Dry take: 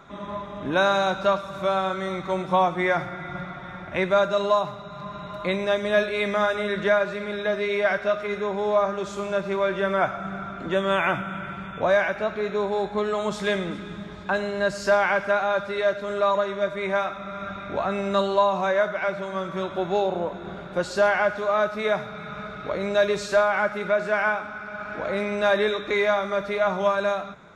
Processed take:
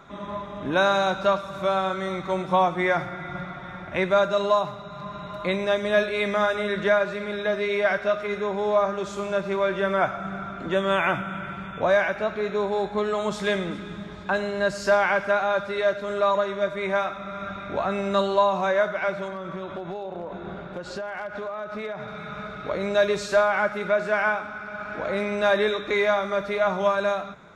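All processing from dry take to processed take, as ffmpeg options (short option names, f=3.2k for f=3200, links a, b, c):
-filter_complex "[0:a]asettb=1/sr,asplit=3[a][b][c];[a]atrim=end=19.284[d];[b]atrim=start=19.28:end=22.08,asetpts=PTS-STARTPTS,afade=t=in:d=0.004:c=qsin,afade=t=out:st=2.796:d=0.004:c=qsin,aemphasis=mode=reproduction:type=50fm,acompressor=threshold=-28dB:ratio=20:attack=3.2:release=140:knee=1:detection=peak,asoftclip=type=hard:threshold=-25dB[e];[c]atrim=start=22.076[f];[d][e]acrossfade=d=0.004:c1=hsin:c2=qsin[g];[g][f]acrossfade=d=0.004:c1=qsin:c2=hsin"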